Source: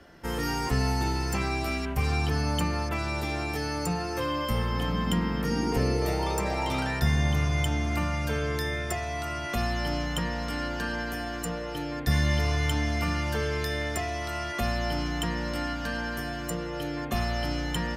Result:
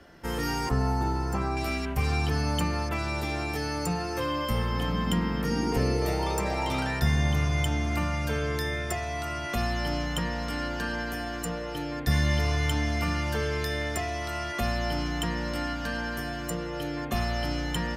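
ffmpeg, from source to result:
ffmpeg -i in.wav -filter_complex "[0:a]asettb=1/sr,asplit=3[link_01][link_02][link_03];[link_01]atrim=end=0.694[link_04];[link_02]atrim=start=0.69:end=1.57,asetpts=PTS-STARTPTS,afade=type=in:duration=0.004:curve=qsin,afade=type=out:start_time=0.876:duration=0.004:curve=qsin,highshelf=frequency=1700:width_type=q:width=1.5:gain=-8.5[link_05];[link_03]atrim=start=1.566[link_06];[link_04][link_05]acrossfade=duration=0.004:curve1=hsin:curve2=qsin[link_07];[link_07][link_06]acrossfade=duration=0.004:curve1=qsin:curve2=hsin" out.wav

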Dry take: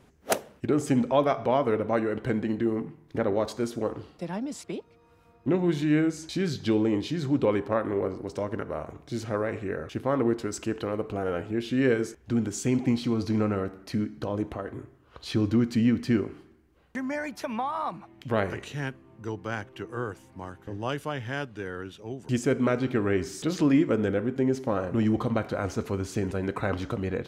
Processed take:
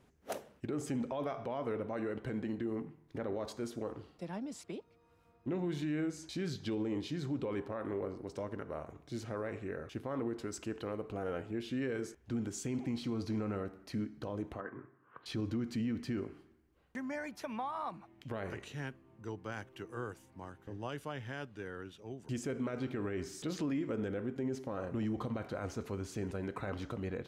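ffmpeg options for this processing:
ffmpeg -i in.wav -filter_complex "[0:a]asettb=1/sr,asplit=3[link_01][link_02][link_03];[link_01]atrim=end=14.604[link_04];[link_02]atrim=start=14.6:end=15.26,asetpts=PTS-STARTPTS,afade=type=in:duration=0.004:curve=qsin,afade=type=out:start_time=0.656:duration=0.004:curve=qsin,highpass=frequency=130:width=0.5412,highpass=frequency=130:width=1.3066,equalizer=frequency=610:width_type=q:width=4:gain=-4,equalizer=frequency=1100:width_type=q:width=4:gain=8,equalizer=frequency=1600:width_type=q:width=4:gain=8,lowpass=frequency=2300:width=0.5412,lowpass=frequency=2300:width=1.3066[link_05];[link_03]atrim=start=15.256[link_06];[link_04][link_05]acrossfade=duration=0.004:curve1=hsin:curve2=qsin[link_07];[link_07][link_06]acrossfade=duration=0.004:curve1=qsin:curve2=hsin,asettb=1/sr,asplit=3[link_08][link_09][link_10];[link_08]atrim=end=19.524[link_11];[link_09]atrim=start=19.52:end=20.26,asetpts=PTS-STARTPTS,afade=type=in:duration=0.004:curve=qsin,afade=type=out:start_time=0.736:duration=0.004:curve=qsin,highshelf=frequency=5900:gain=6[link_12];[link_10]atrim=start=20.256[link_13];[link_11][link_12]acrossfade=duration=0.004:curve1=hsin:curve2=qsin[link_14];[link_14][link_13]acrossfade=duration=0.004:curve1=qsin:curve2=hsin,alimiter=limit=-20dB:level=0:latency=1:release=31,volume=-8.5dB" out.wav

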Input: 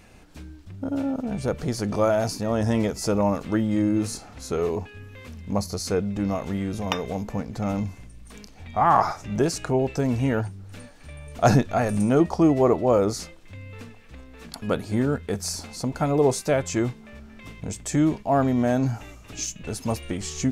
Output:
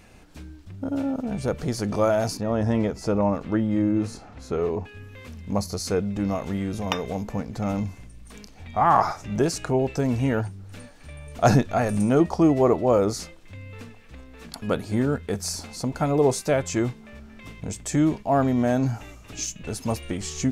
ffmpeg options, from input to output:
ffmpeg -i in.wav -filter_complex "[0:a]asettb=1/sr,asplit=3[link_01][link_02][link_03];[link_01]atrim=end=2.374[link_04];[link_02]atrim=start=2.37:end=4.85,asetpts=PTS-STARTPTS,afade=type=in:duration=0.004:curve=qsin,afade=type=out:start_time=2.476:duration=0.004:curve=qsin,lowpass=frequency=2200:poles=1[link_05];[link_03]atrim=start=4.846[link_06];[link_04][link_05]acrossfade=duration=0.004:curve1=hsin:curve2=qsin[link_07];[link_07][link_06]acrossfade=duration=0.004:curve1=qsin:curve2=hsin" out.wav

